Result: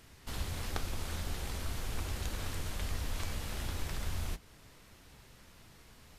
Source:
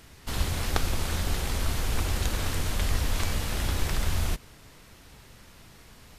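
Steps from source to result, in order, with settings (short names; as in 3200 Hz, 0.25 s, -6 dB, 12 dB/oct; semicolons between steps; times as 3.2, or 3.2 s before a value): in parallel at -0.5 dB: compressor, threshold -34 dBFS, peak gain reduction 14.5 dB; on the sum: flange 1.6 Hz, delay 7.7 ms, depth 8.9 ms, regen -75%; gain -7.5 dB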